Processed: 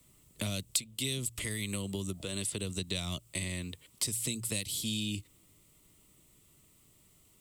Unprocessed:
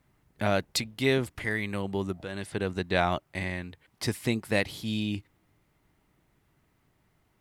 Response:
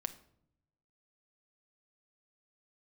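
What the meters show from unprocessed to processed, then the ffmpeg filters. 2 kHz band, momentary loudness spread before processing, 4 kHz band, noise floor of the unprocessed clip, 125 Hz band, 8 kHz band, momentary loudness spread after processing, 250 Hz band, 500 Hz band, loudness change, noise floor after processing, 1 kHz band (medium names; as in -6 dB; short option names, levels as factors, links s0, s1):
-10.5 dB, 8 LU, 0.0 dB, -71 dBFS, -4.5 dB, +8.5 dB, 6 LU, -7.0 dB, -13.0 dB, -4.5 dB, -64 dBFS, -19.0 dB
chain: -filter_complex "[0:a]asplit=2[s0][s1];[s1]volume=7.94,asoftclip=hard,volume=0.126,volume=0.251[s2];[s0][s2]amix=inputs=2:normalize=0,bandreject=f=58.13:t=h:w=4,bandreject=f=116.26:t=h:w=4,acrossover=split=200|3000[s3][s4][s5];[s4]acompressor=threshold=0.02:ratio=6[s6];[s3][s6][s5]amix=inputs=3:normalize=0,equalizer=f=800:t=o:w=0.33:g=-12,equalizer=f=1600:t=o:w=0.33:g=-11,equalizer=f=8000:t=o:w=0.33:g=10,acrossover=split=230[s7][s8];[s8]aexciter=amount=2.1:drive=6.7:freq=2800[s9];[s7][s9]amix=inputs=2:normalize=0,acompressor=threshold=0.0224:ratio=3"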